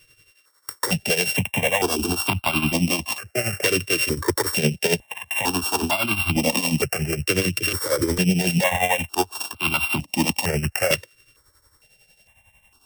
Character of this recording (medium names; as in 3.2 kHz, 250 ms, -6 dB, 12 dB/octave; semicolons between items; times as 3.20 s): a buzz of ramps at a fixed pitch in blocks of 16 samples; tremolo triangle 11 Hz, depth 75%; notches that jump at a steady rate 2.2 Hz 220–1800 Hz